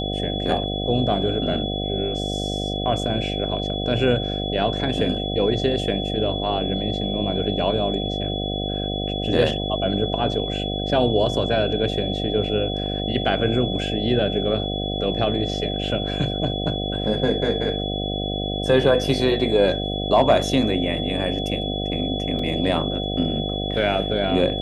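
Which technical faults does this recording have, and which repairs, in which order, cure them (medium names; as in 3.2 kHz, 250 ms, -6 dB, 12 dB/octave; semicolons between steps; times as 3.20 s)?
buzz 50 Hz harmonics 15 -27 dBFS
whine 3.4 kHz -29 dBFS
22.39 s: dropout 3.1 ms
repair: band-stop 3.4 kHz, Q 30; de-hum 50 Hz, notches 15; interpolate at 22.39 s, 3.1 ms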